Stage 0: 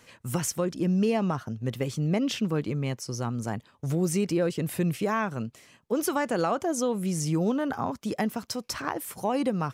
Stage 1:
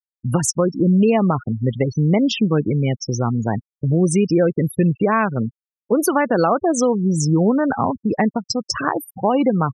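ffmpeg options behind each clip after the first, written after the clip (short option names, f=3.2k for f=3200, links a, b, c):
-filter_complex "[0:a]afftfilt=real='re*gte(hypot(re,im),0.0355)':imag='im*gte(hypot(re,im),0.0355)':win_size=1024:overlap=0.75,asplit=2[a][b];[b]acompressor=threshold=-33dB:ratio=6,volume=-1dB[c];[a][c]amix=inputs=2:normalize=0,volume=7.5dB"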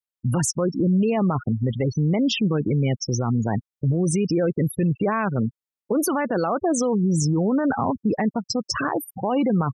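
-af "alimiter=limit=-14.5dB:level=0:latency=1:release=12"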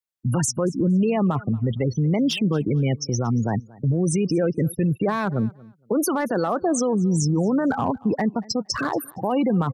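-filter_complex "[0:a]acrossover=split=160|910|4800[a][b][c][d];[c]asoftclip=type=hard:threshold=-25dB[e];[a][b][e][d]amix=inputs=4:normalize=0,aecho=1:1:232|464:0.0708|0.0142"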